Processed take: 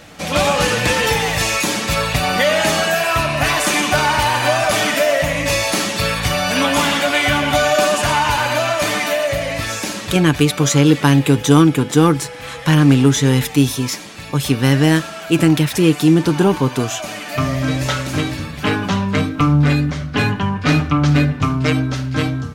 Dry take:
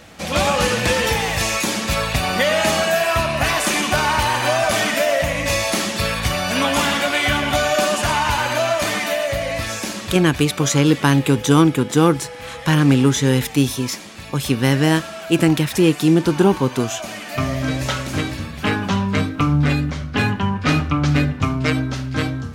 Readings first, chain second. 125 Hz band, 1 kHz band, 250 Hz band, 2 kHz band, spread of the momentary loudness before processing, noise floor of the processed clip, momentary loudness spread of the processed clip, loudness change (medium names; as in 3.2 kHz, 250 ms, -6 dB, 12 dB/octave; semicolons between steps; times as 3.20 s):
+3.0 dB, +2.5 dB, +2.5 dB, +2.5 dB, 8 LU, -31 dBFS, 8 LU, +2.5 dB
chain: comb 6.8 ms, depth 32%; in parallel at -10 dB: saturation -16.5 dBFS, distortion -8 dB